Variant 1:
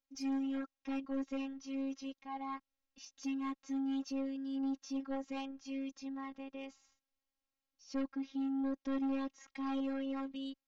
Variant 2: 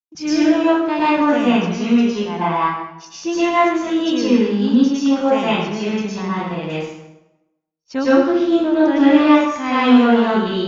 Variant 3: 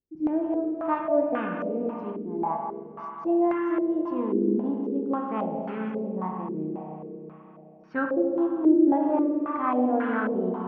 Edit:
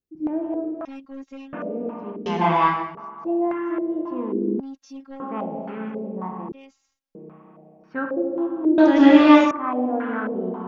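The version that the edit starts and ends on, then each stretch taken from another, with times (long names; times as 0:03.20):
3
0:00.85–0:01.53: punch in from 1
0:02.26–0:02.95: punch in from 2
0:04.60–0:05.20: punch in from 1
0:06.52–0:07.15: punch in from 1
0:08.78–0:09.51: punch in from 2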